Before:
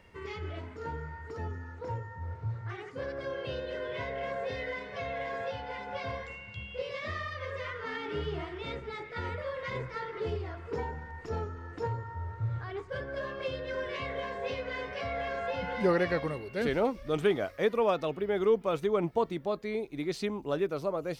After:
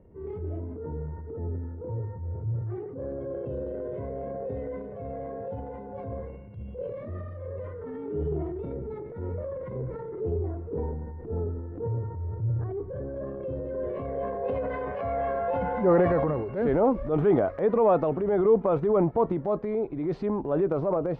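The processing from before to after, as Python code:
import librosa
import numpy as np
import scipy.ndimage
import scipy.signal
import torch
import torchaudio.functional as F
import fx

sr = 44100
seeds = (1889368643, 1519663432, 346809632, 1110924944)

y = fx.filter_sweep_lowpass(x, sr, from_hz=400.0, to_hz=910.0, start_s=13.59, end_s=14.88, q=1.1)
y = fx.transient(y, sr, attack_db=-5, sustain_db=7)
y = y * 10.0 ** (5.5 / 20.0)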